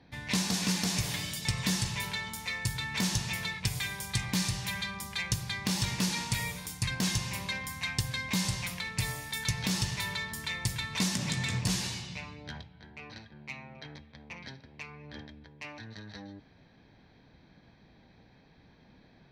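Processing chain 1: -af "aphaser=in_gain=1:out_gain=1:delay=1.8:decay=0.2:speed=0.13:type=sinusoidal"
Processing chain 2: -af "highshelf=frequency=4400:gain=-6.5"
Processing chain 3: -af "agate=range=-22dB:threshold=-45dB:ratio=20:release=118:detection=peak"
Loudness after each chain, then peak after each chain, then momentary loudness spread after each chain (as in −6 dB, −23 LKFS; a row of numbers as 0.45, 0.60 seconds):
−31.5, −34.0, −32.0 LKFS; −14.0, −17.0, −14.5 dBFS; 16, 16, 17 LU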